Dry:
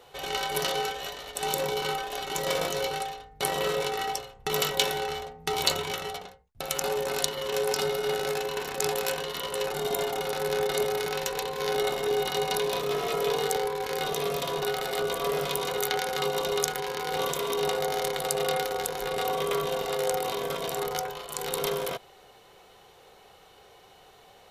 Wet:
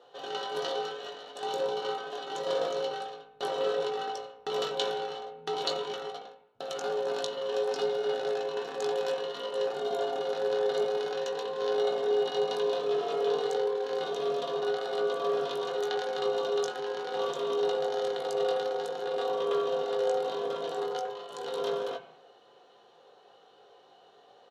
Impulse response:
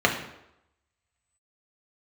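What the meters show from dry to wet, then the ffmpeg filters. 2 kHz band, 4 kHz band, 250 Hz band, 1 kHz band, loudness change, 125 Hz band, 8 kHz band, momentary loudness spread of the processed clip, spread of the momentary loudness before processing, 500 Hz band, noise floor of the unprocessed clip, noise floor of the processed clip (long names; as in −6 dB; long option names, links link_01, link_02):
−8.0 dB, −6.5 dB, −4.0 dB, −4.0 dB, −2.5 dB, −13.5 dB, −15.5 dB, 8 LU, 5 LU, 0.0 dB, −55 dBFS, −59 dBFS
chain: -filter_complex "[0:a]highpass=220,lowpass=4100,equalizer=frequency=2000:width_type=o:width=0.44:gain=-7,asplit=2[link_01][link_02];[link_02]adelay=19,volume=-8.5dB[link_03];[link_01][link_03]amix=inputs=2:normalize=0,asplit=2[link_04][link_05];[1:a]atrim=start_sample=2205[link_06];[link_05][link_06]afir=irnorm=-1:irlink=0,volume=-19.5dB[link_07];[link_04][link_07]amix=inputs=2:normalize=0,volume=-6.5dB"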